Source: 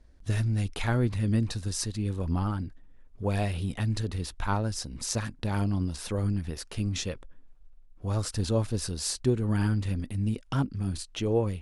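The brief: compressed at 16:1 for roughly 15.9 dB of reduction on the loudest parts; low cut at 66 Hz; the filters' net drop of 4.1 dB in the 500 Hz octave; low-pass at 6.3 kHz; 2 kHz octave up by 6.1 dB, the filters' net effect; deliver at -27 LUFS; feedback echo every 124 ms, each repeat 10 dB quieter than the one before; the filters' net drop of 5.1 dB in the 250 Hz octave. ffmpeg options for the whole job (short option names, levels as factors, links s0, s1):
-af "highpass=66,lowpass=6300,equalizer=f=250:t=o:g=-6,equalizer=f=500:t=o:g=-3.5,equalizer=f=2000:t=o:g=8.5,acompressor=threshold=0.0112:ratio=16,aecho=1:1:124|248|372|496:0.316|0.101|0.0324|0.0104,volume=6.31"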